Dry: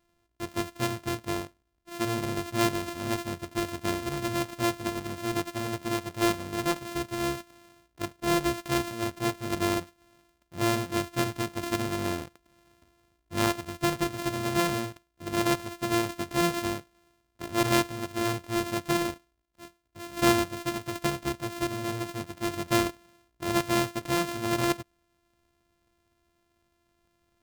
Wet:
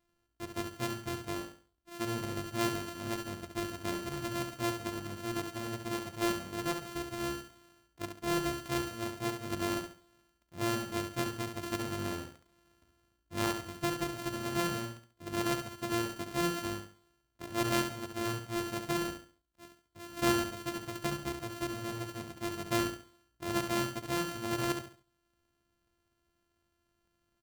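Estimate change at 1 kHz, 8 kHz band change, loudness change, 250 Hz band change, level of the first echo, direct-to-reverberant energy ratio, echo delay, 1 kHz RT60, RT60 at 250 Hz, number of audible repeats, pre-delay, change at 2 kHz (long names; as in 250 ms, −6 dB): −6.5 dB, −5.5 dB, −6.0 dB, −6.0 dB, −7.0 dB, no reverb audible, 69 ms, no reverb audible, no reverb audible, 3, no reverb audible, −6.0 dB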